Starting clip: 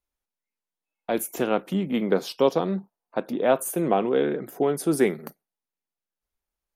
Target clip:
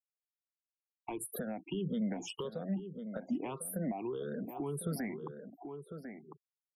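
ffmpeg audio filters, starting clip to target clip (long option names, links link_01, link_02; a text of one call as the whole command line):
ffmpeg -i in.wav -filter_complex "[0:a]afftfilt=real='re*pow(10,19/40*sin(2*PI*(0.67*log(max(b,1)*sr/1024/100)/log(2)-(1.7)*(pts-256)/sr)))':imag='im*pow(10,19/40*sin(2*PI*(0.67*log(max(b,1)*sr/1024/100)/log(2)-(1.7)*(pts-256)/sr)))':win_size=1024:overlap=0.75,bandreject=frequency=60:width_type=h:width=6,bandreject=frequency=120:width_type=h:width=6,bandreject=frequency=180:width_type=h:width=6,afftfilt=real='re*gte(hypot(re,im),0.0251)':imag='im*gte(hypot(re,im),0.0251)':win_size=1024:overlap=0.75,acompressor=threshold=-33dB:ratio=4,alimiter=level_in=3dB:limit=-24dB:level=0:latency=1:release=47,volume=-3dB,asplit=2[link_01][link_02];[link_02]adelay=1050,volume=-12dB,highshelf=frequency=4000:gain=-23.6[link_03];[link_01][link_03]amix=inputs=2:normalize=0,acrossover=split=220[link_04][link_05];[link_05]acompressor=threshold=-48dB:ratio=2.5[link_06];[link_04][link_06]amix=inputs=2:normalize=0,volume=4.5dB" out.wav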